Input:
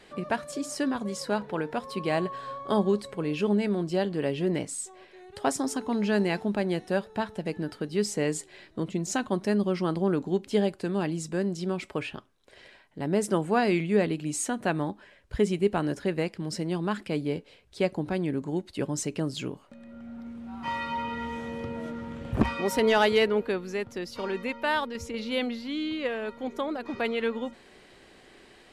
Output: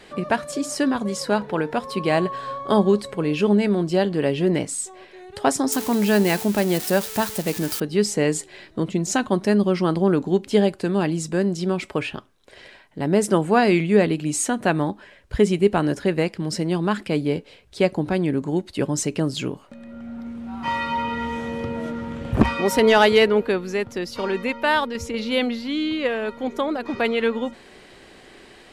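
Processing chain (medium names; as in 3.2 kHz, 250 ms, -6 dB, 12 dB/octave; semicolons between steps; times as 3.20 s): 5.72–7.80 s: zero-crossing glitches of -25.5 dBFS; trim +7 dB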